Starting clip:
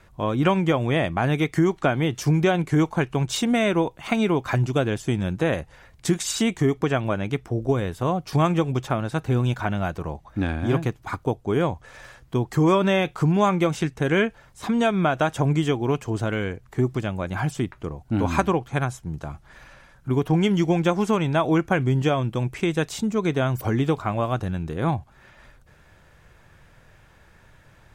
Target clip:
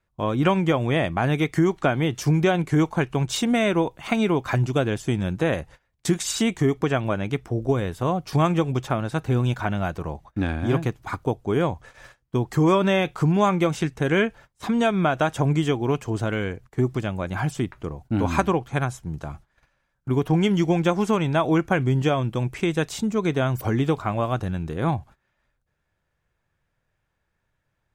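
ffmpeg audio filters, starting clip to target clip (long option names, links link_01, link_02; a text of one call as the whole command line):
ffmpeg -i in.wav -af "agate=range=-22dB:threshold=-43dB:ratio=16:detection=peak" out.wav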